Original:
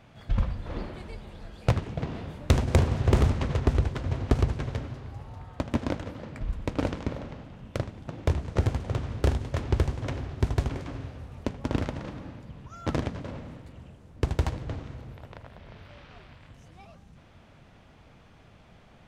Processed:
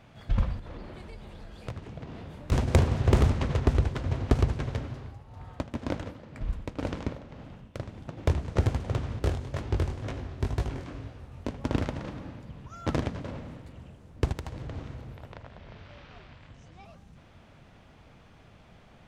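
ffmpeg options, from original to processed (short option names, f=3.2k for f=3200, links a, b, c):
-filter_complex "[0:a]asettb=1/sr,asplit=3[a][b][c];[a]atrim=end=0.594[d];[b]atrim=start=0.59:end=2.52,asetpts=PTS-STARTPTS,afade=t=in:d=0.004:c=qsin,afade=t=out:st=1.926:d=0.004:c=qsin,acompressor=threshold=-40dB:ratio=2.5:attack=3.2:release=140:knee=1:detection=peak[e];[c]atrim=start=2.516[f];[d][e]acrossfade=d=0.004:c1=hsin:c2=qsin[g];[g][f]acrossfade=d=0.004:c1=qsin:c2=hsin,asettb=1/sr,asplit=3[h][i][j];[h]atrim=end=4.994[k];[i]atrim=start=4.99:end=8.17,asetpts=PTS-STARTPTS,afade=t=in:d=0.004:c=qsin,afade=t=out:st=3.176:d=0.004:c=qsin,tremolo=f=2:d=0.6[l];[j]atrim=start=8.166[m];[k][l]acrossfade=d=0.004:c1=hsin:c2=qsin[n];[n][m]acrossfade=d=0.004:c1=qsin:c2=hsin,asettb=1/sr,asplit=3[o][p][q];[o]atrim=end=9.194[r];[p]atrim=start=9.19:end=11.51,asetpts=PTS-STARTPTS,afade=t=in:d=0.004:c=qsin,afade=t=out:st=2.316:d=0.004:c=qsin,flanger=delay=18:depth=6.1:speed=2.1[s];[q]atrim=start=11.506[t];[r][s]acrossfade=d=0.004:c1=hsin:c2=qsin[u];[u][t]acrossfade=d=0.004:c1=qsin:c2=hsin,asettb=1/sr,asplit=3[v][w][x];[v]atrim=end=14.324[y];[w]atrim=start=14.32:end=14.76,asetpts=PTS-STARTPTS,afade=t=in:d=0.004:c=qsin,afade=t=out:st=0.436:d=0.004:c=qsin,acompressor=threshold=-33dB:ratio=8:attack=3.2:release=140:knee=1:detection=peak[z];[x]atrim=start=14.756[aa];[y][z]acrossfade=d=0.004:c1=hsin:c2=qsin[ab];[ab][aa]acrossfade=d=0.004:c1=qsin:c2=hsin,asettb=1/sr,asplit=3[ac][ad][ae];[ac]atrim=end=15.344[af];[ad]atrim=start=15.34:end=16.85,asetpts=PTS-STARTPTS,afade=t=in:d=0.004:c=qsin,afade=t=out:st=1.506:d=0.004:c=qsin,lowpass=f=7.8k:w=0.5412,lowpass=f=7.8k:w=1.3066[ag];[ae]atrim=start=16.846[ah];[af][ag]acrossfade=d=0.004:c1=hsin:c2=qsin[ai];[ai][ah]acrossfade=d=0.004:c1=qsin:c2=hsin"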